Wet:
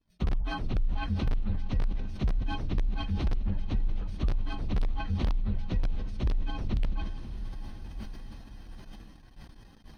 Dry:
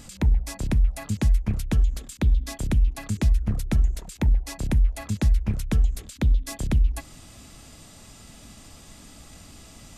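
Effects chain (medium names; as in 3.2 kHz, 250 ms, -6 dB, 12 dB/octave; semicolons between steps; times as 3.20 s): frequency axis rescaled in octaves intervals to 122%; low-pass that closes with the level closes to 2.6 kHz, closed at -19.5 dBFS; on a send: echo that smears into a reverb 615 ms, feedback 60%, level -13 dB; on the sum: gate -45 dBFS, range -30 dB; in parallel at -8 dB: integer overflow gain 13.5 dB; on the sum: compression, threshold -18 dBFS, peak gain reduction 5.5 dB; Savitzky-Golay filter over 15 samples; decay stretcher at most 39 dB/s; trim -5 dB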